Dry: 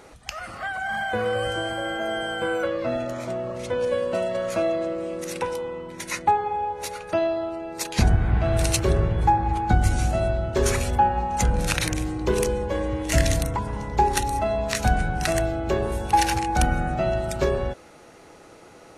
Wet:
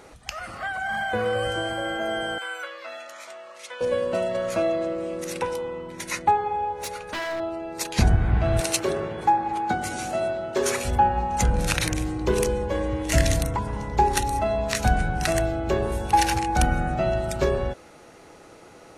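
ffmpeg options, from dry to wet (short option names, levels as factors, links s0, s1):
-filter_complex "[0:a]asettb=1/sr,asplit=3[s0][s1][s2];[s0]atrim=end=2.384[s3];[s1]atrim=start=2.38:end=3.81,asetpts=PTS-STARTPTS,afade=t=in:d=0.004:c=qsin,afade=t=out:st=1.426:d=0.004:c=qsin,highpass=1300[s4];[s2]atrim=start=3.806[s5];[s3][s4]acrossfade=d=0.004:c1=hsin:c2=qsin[s6];[s6][s5]acrossfade=d=0.004:c1=qsin:c2=hsin,asettb=1/sr,asplit=3[s7][s8][s9];[s7]atrim=end=6.804[s10];[s8]atrim=start=6.8:end=7.4,asetpts=PTS-STARTPTS,afade=t=in:d=0.004:c=qsin,afade=t=out:st=0.596:d=0.004:c=qsin,aeval=exprs='0.0596*(abs(mod(val(0)/0.0596+3,4)-2)-1)':c=same[s11];[s9]atrim=start=7.396[s12];[s10][s11]acrossfade=d=0.004:c1=hsin:c2=qsin[s13];[s13][s12]acrossfade=d=0.004:c1=qsin:c2=hsin,asettb=1/sr,asplit=3[s14][s15][s16];[s14]atrim=end=8.604[s17];[s15]atrim=start=8.6:end=10.85,asetpts=PTS-STARTPTS,afade=t=in:d=0.004:c=qsin,afade=t=out:st=2.246:d=0.004:c=qsin,highpass=270[s18];[s16]atrim=start=10.846[s19];[s17][s18]acrossfade=d=0.004:c1=hsin:c2=qsin[s20];[s20][s19]acrossfade=d=0.004:c1=qsin:c2=hsin"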